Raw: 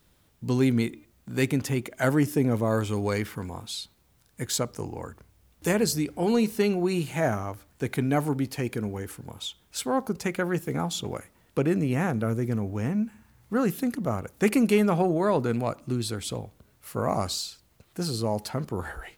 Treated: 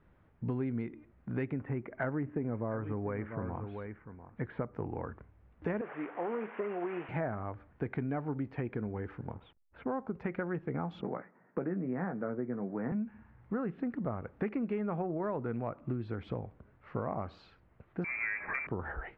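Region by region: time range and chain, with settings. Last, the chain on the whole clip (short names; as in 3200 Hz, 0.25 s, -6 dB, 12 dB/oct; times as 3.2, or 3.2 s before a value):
1.53–4.75 LPF 2400 Hz 24 dB/oct + echo 0.694 s -15 dB
5.81–7.09 delta modulation 16 kbps, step -36 dBFS + HPF 520 Hz
9.34–9.92 Gaussian blur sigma 2.9 samples + backlash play -50.5 dBFS + mismatched tape noise reduction decoder only
11.01–12.92 Chebyshev band-pass 170–1900 Hz, order 3 + doubler 16 ms -7 dB
18.04–18.67 zero-crossing step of -31 dBFS + inverted band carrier 2500 Hz
whole clip: LPF 2000 Hz 24 dB/oct; compressor 6:1, threshold -32 dBFS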